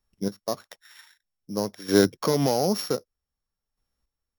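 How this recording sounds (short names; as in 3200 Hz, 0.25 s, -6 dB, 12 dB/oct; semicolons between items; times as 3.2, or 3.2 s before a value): a buzz of ramps at a fixed pitch in blocks of 8 samples; chopped level 0.53 Hz, depth 60%, duty 15%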